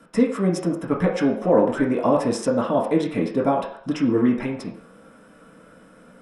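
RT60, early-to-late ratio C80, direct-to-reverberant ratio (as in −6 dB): 0.60 s, 10.0 dB, −3.5 dB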